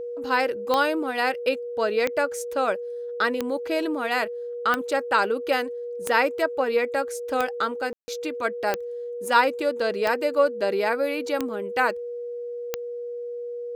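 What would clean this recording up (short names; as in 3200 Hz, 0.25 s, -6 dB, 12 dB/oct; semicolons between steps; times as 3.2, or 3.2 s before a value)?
de-click; notch 480 Hz, Q 30; room tone fill 7.93–8.08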